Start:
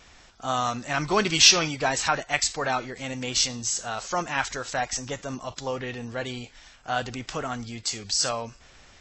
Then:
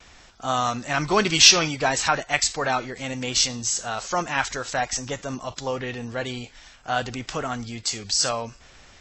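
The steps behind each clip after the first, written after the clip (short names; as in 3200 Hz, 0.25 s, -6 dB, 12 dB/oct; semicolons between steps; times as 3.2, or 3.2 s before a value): gate with hold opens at -47 dBFS; gain +2.5 dB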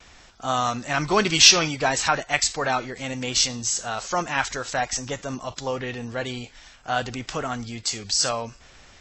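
nothing audible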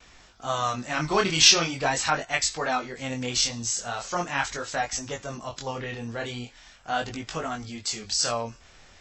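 chorus 0.41 Hz, delay 18.5 ms, depth 7.6 ms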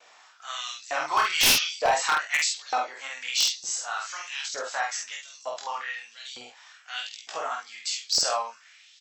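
LFO high-pass saw up 1.1 Hz 540–5200 Hz; wavefolder -11 dBFS; doubler 48 ms -3 dB; gain -3.5 dB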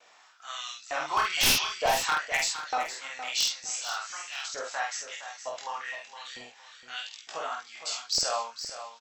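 low shelf 180 Hz +8.5 dB; on a send: feedback echo 0.464 s, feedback 26%, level -11 dB; on the sum: gain -3.5 dB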